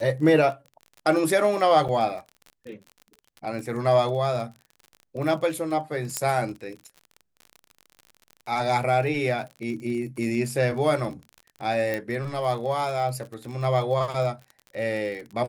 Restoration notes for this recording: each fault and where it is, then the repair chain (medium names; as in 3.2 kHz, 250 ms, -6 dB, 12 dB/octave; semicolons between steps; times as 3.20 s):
crackle 41 per s -34 dBFS
1.88–1.89 s: dropout 7.1 ms
6.17 s: pop -9 dBFS
11.94 s: pop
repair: de-click; interpolate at 1.88 s, 7.1 ms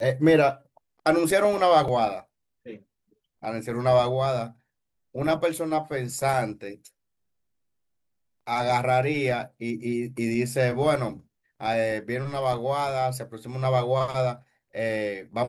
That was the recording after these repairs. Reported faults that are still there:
11.94 s: pop